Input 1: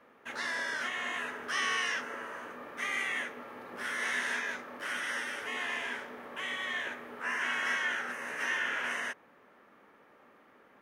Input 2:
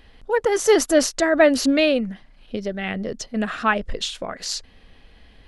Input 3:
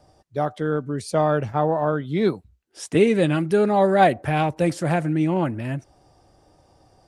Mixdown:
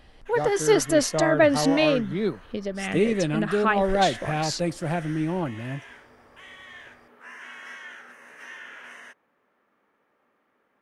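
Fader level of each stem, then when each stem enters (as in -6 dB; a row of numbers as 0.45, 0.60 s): -9.5, -3.5, -5.5 dB; 0.00, 0.00, 0.00 s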